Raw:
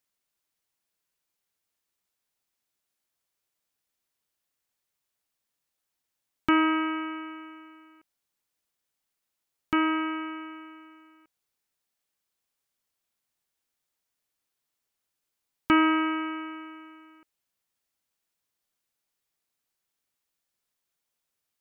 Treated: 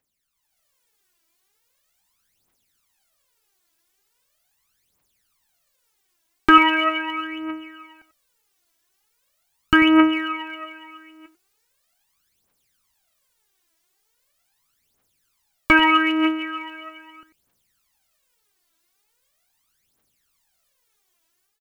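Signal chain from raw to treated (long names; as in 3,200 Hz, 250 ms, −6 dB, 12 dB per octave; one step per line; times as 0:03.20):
automatic gain control gain up to 9 dB
slap from a distant wall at 16 metres, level −13 dB
phase shifter 0.4 Hz, delay 3.1 ms, feedback 75%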